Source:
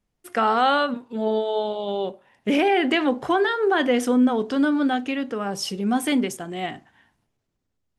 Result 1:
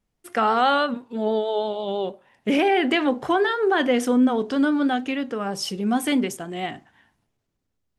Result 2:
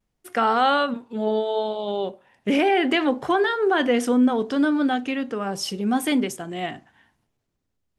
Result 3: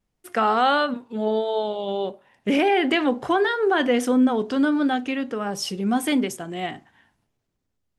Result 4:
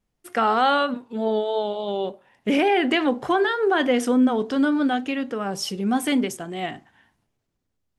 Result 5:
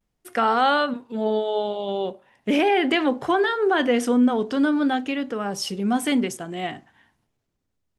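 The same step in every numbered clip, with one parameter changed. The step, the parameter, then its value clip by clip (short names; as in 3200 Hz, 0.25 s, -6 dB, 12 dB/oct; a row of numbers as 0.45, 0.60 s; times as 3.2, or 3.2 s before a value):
vibrato, rate: 6.2, 0.71, 1.5, 3.4, 0.44 Hz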